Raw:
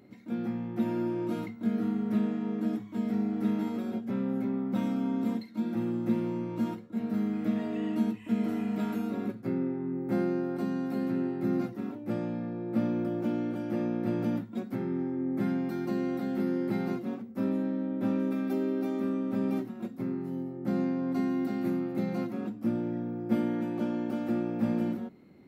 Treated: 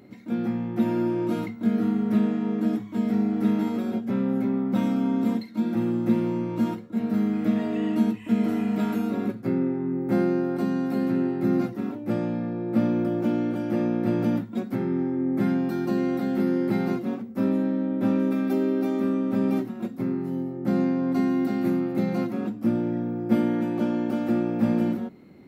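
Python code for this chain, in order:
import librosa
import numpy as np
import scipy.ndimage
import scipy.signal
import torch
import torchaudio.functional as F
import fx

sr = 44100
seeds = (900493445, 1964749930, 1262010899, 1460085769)

y = fx.notch(x, sr, hz=2100.0, q=17.0, at=(15.54, 15.98))
y = F.gain(torch.from_numpy(y), 6.0).numpy()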